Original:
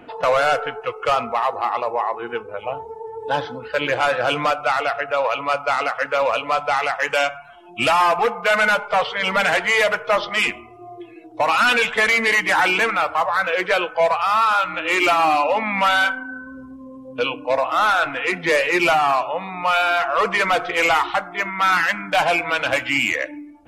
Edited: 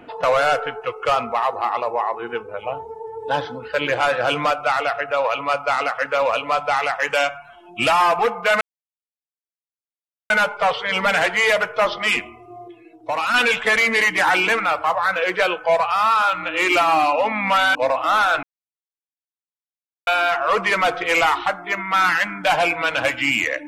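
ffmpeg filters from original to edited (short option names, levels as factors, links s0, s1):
-filter_complex "[0:a]asplit=7[s0][s1][s2][s3][s4][s5][s6];[s0]atrim=end=8.61,asetpts=PTS-STARTPTS,afade=t=out:st=8.606:d=0.004:c=hsin,apad=pad_dur=1.69[s7];[s1]atrim=start=8.61:end=10.992,asetpts=PTS-STARTPTS,afade=t=in:d=0.004:c=hsin[s8];[s2]atrim=start=10.988:end=11.652,asetpts=PTS-STARTPTS,volume=0.596[s9];[s3]atrim=start=11.648:end=16.062[s10];[s4]atrim=start=17.428:end=18.11,asetpts=PTS-STARTPTS,afade=t=out:st=0.678:d=0.004:c=hsin[s11];[s5]atrim=start=18.11:end=19.75,asetpts=PTS-STARTPTS,volume=0[s12];[s6]atrim=start=19.75,asetpts=PTS-STARTPTS,afade=t=in:d=0.004:c=hsin[s13];[s7][s8]concat=n=2:v=0:a=1[s14];[s14][s9]acrossfade=d=0.004:c1=hsin:c2=hsin[s15];[s15][s10]acrossfade=d=0.004:c1=hsin:c2=hsin[s16];[s11][s12][s13]concat=n=3:v=0:a=1[s17];[s16][s17]acrossfade=d=0.004:c1=hsin:c2=hsin"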